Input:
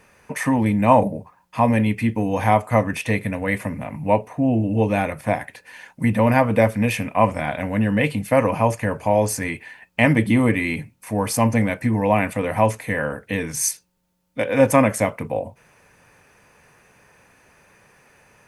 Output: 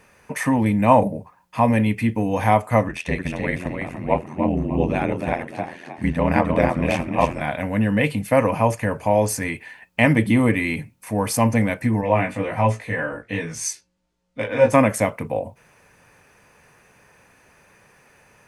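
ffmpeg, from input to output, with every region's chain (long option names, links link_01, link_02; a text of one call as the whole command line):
ffmpeg -i in.wav -filter_complex "[0:a]asettb=1/sr,asplit=3[link_01][link_02][link_03];[link_01]atrim=end=2.884[link_04];[link_02]atrim=start=2.88:end=7.41,asetpts=PTS-STARTPTS,afade=type=in:duration=0.004:curve=qsin,afade=type=out:start_time=4.526:duration=0.004:curve=qsin,lowpass=7500,asplit=5[link_05][link_06][link_07][link_08][link_09];[link_06]adelay=301,afreqshift=38,volume=-5dB[link_10];[link_07]adelay=602,afreqshift=76,volume=-14.4dB[link_11];[link_08]adelay=903,afreqshift=114,volume=-23.7dB[link_12];[link_09]adelay=1204,afreqshift=152,volume=-33.1dB[link_13];[link_05][link_10][link_11][link_12][link_13]amix=inputs=5:normalize=0,atrim=end_sample=199773,aeval=exprs='val(0)*sin(2*PI*42*n/s)':channel_layout=same[link_14];[link_03]atrim=start=7.406[link_15];[link_04][link_14]acrossfade=duration=0.004:curve1=hsin:curve2=qsin[link_16];[link_16][link_15]acrossfade=duration=0.004:curve1=qsin:curve2=hsin,asettb=1/sr,asplit=3[link_17][link_18][link_19];[link_17]atrim=end=12.014[link_20];[link_18]atrim=start=12.01:end=14.74,asetpts=PTS-STARTPTS,afade=type=in:duration=0.004:curve=qsin,afade=type=out:start_time=2.726:duration=0.004:curve=qsin,lowpass=6900,flanger=delay=18.5:depth=2:speed=1.3,asplit=2[link_21][link_22];[link_22]adelay=17,volume=-4dB[link_23];[link_21][link_23]amix=inputs=2:normalize=0,atrim=end_sample=120393[link_24];[link_19]atrim=start=14.736[link_25];[link_20][link_24]acrossfade=duration=0.004:curve1=hsin:curve2=qsin[link_26];[link_26][link_25]acrossfade=duration=0.004:curve1=qsin:curve2=hsin" out.wav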